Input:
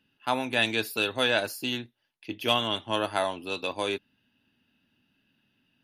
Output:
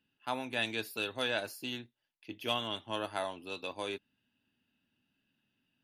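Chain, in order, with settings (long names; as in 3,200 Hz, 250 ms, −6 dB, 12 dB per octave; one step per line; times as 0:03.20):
level −8.5 dB
AAC 128 kbit/s 48,000 Hz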